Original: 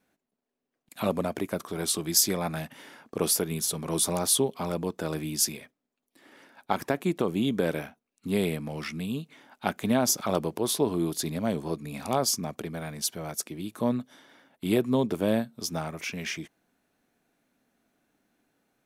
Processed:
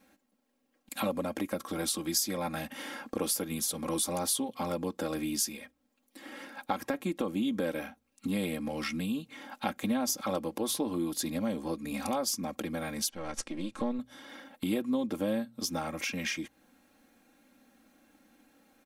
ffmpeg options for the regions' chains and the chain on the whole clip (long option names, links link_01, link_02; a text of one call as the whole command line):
ffmpeg -i in.wav -filter_complex "[0:a]asettb=1/sr,asplit=3[link_01][link_02][link_03];[link_01]atrim=end=13.094[link_04];[link_02]atrim=start=13.09:end=13.99,asetpts=PTS-STARTPTS,afade=type=in:duration=0.004:curve=qsin,afade=type=out:start_time=0.896:duration=0.004:curve=qsin,aeval=exprs='if(lt(val(0),0),0.447*val(0),val(0))':channel_layout=same,lowpass=frequency=8800:width=0.5412,lowpass=frequency=8800:width=1.3066,highshelf=frequency=6800:gain=-5[link_05];[link_03]atrim=start=13.986[link_06];[link_04][link_05]acrossfade=duration=0.004:curve1=hsin:curve2=qsin[link_07];[link_07][link_06]acrossfade=duration=0.004:curve1=qsin:curve2=hsin,aecho=1:1:3.7:0.83,bandreject=frequency=60.11:width_type=h:width=4,bandreject=frequency=120.22:width_type=h:width=4,acompressor=threshold=-42dB:ratio=2.5,volume=6.5dB" out.wav